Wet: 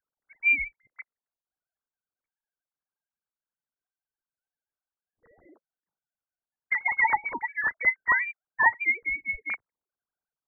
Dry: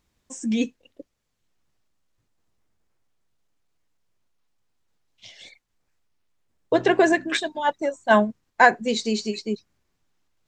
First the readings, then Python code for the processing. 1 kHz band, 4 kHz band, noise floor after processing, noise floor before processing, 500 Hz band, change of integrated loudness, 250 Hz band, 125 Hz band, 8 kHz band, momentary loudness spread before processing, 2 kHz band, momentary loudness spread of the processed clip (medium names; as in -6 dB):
-6.5 dB, under -25 dB, under -85 dBFS, -75 dBFS, -26.0 dB, -3.0 dB, -26.5 dB, under -15 dB, under -40 dB, 13 LU, +1.5 dB, 10 LU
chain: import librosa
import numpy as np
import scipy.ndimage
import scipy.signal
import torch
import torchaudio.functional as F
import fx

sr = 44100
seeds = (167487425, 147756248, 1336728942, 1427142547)

y = fx.sine_speech(x, sr)
y = fx.freq_invert(y, sr, carrier_hz=2600)
y = y * librosa.db_to_amplitude(-5.0)